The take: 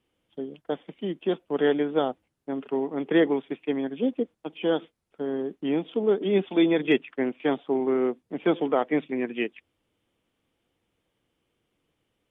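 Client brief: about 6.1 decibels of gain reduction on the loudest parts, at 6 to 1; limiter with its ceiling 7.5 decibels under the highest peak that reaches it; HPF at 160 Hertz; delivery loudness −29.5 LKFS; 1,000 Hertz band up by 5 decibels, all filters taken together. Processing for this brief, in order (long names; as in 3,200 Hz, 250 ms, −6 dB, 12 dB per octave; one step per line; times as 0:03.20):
high-pass filter 160 Hz
parametric band 1,000 Hz +7 dB
downward compressor 6 to 1, threshold −22 dBFS
level +2 dB
brickwall limiter −18.5 dBFS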